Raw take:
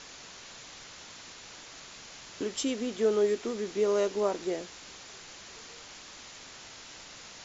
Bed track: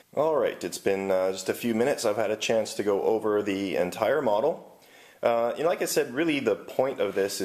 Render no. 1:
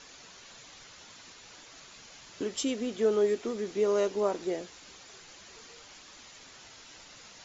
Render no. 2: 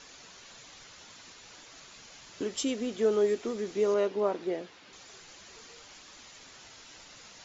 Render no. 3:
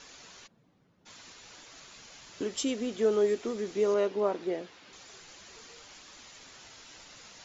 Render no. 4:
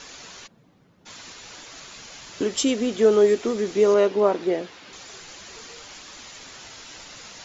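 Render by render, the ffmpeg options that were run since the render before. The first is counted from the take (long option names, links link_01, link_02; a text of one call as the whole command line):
ffmpeg -i in.wav -af "afftdn=noise_reduction=6:noise_floor=-48" out.wav
ffmpeg -i in.wav -filter_complex "[0:a]asettb=1/sr,asplit=3[link_01][link_02][link_03];[link_01]atrim=end=3.944[link_04];[link_02]atrim=start=3.94:end=4.93,asetpts=PTS-STARTPTS,afade=type=in:duration=0.004:curve=qsin,afade=type=out:start_time=0.986:duration=0.004:curve=qsin,highpass=110,lowpass=3700[link_05];[link_03]atrim=start=4.926[link_06];[link_04][link_05]acrossfade=duration=0.004:curve1=hsin:curve2=qsin[link_07];[link_07][link_06]acrossfade=duration=0.004:curve1=qsin:curve2=hsin" out.wav
ffmpeg -i in.wav -filter_complex "[0:a]asplit=3[link_01][link_02][link_03];[link_01]afade=type=out:start_time=0.46:duration=0.02[link_04];[link_02]bandpass=frequency=180:width_type=q:width=1.5,afade=type=in:start_time=0.46:duration=0.02,afade=type=out:start_time=1.05:duration=0.02[link_05];[link_03]afade=type=in:start_time=1.05:duration=0.02[link_06];[link_04][link_05][link_06]amix=inputs=3:normalize=0" out.wav
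ffmpeg -i in.wav -af "volume=9dB" out.wav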